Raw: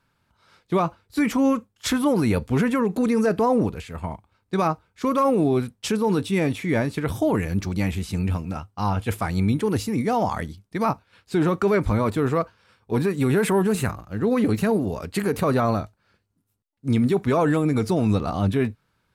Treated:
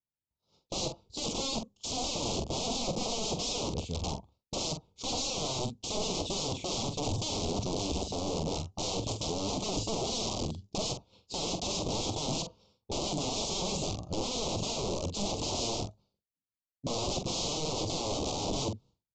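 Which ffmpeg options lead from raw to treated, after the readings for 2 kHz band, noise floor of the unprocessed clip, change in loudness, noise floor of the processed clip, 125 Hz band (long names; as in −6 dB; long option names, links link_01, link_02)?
−15.5 dB, −71 dBFS, −10.5 dB, below −85 dBFS, −12.5 dB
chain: -filter_complex "[0:a]agate=range=-33dB:threshold=-48dB:ratio=3:detection=peak,adynamicequalizer=threshold=0.00282:dfrequency=5000:dqfactor=1.3:tfrequency=5000:tqfactor=1.3:attack=5:release=100:ratio=0.375:range=2.5:mode=cutabove:tftype=bell,asplit=2[link_01][link_02];[link_02]alimiter=limit=-21dB:level=0:latency=1:release=199,volume=0dB[link_03];[link_01][link_03]amix=inputs=2:normalize=0,aeval=exprs='(mod(10.6*val(0)+1,2)-1)/10.6':channel_layout=same,asuperstop=centerf=1700:order=4:qfactor=0.61,asplit=2[link_04][link_05];[link_05]adelay=45,volume=-8dB[link_06];[link_04][link_06]amix=inputs=2:normalize=0,aresample=16000,aresample=44100,volume=-4.5dB"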